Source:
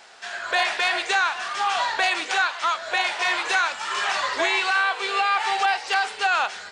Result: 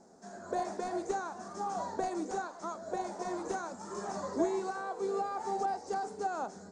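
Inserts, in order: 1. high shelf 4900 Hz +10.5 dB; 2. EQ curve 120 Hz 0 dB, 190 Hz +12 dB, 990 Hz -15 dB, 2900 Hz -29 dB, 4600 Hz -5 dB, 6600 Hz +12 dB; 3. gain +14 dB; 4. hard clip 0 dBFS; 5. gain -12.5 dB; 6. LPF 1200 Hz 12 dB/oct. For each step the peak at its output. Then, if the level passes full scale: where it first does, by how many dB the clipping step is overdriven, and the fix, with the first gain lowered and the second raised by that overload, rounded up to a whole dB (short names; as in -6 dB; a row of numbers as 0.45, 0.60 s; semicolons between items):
-7.5, -6.5, +7.5, 0.0, -12.5, -18.5 dBFS; step 3, 7.5 dB; step 3 +6 dB, step 5 -4.5 dB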